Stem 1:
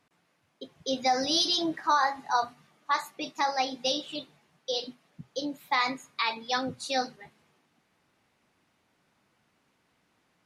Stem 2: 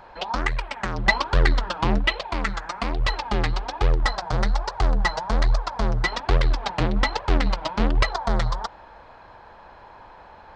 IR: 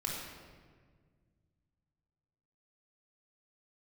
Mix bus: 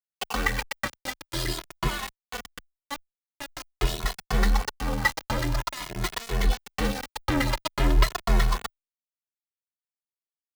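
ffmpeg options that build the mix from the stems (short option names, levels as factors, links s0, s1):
-filter_complex "[0:a]lowpass=f=3300:p=1,volume=0.794,asplit=2[s0][s1];[1:a]adynamicequalizer=threshold=0.0112:dfrequency=1900:dqfactor=4.4:tfrequency=1900:tqfactor=4.4:attack=5:release=100:ratio=0.375:range=2.5:mode=boostabove:tftype=bell,acrossover=split=300[s2][s3];[s3]acompressor=threshold=0.1:ratio=3[s4];[s2][s4]amix=inputs=2:normalize=0,volume=1.33,asplit=3[s5][s6][s7];[s5]atrim=end=2.69,asetpts=PTS-STARTPTS,afade=t=out:st=2.686:d=0.004:c=hsin[s8];[s6]atrim=start=2.69:end=3.51,asetpts=PTS-STARTPTS,volume=0[s9];[s7]atrim=start=3.51,asetpts=PTS-STARTPTS,afade=t=in:d=0.004:c=hsin[s10];[s8][s9][s10]concat=n=3:v=0:a=1[s11];[s1]apad=whole_len=465271[s12];[s11][s12]sidechaincompress=threshold=0.0141:ratio=12:attack=11:release=275[s13];[s0][s13]amix=inputs=2:normalize=0,adynamicequalizer=threshold=0.00708:dfrequency=660:dqfactor=2.4:tfrequency=660:tqfactor=2.4:attack=5:release=100:ratio=0.375:range=2:mode=cutabove:tftype=bell,aeval=exprs='val(0)*gte(abs(val(0)),0.0841)':c=same,asplit=2[s14][s15];[s15]adelay=2.3,afreqshift=0.47[s16];[s14][s16]amix=inputs=2:normalize=1"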